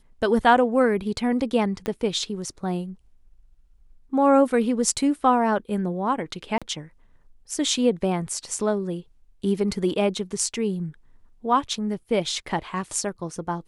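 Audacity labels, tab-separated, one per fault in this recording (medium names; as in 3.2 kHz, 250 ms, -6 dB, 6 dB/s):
1.860000	1.860000	pop -14 dBFS
6.580000	6.620000	dropout 36 ms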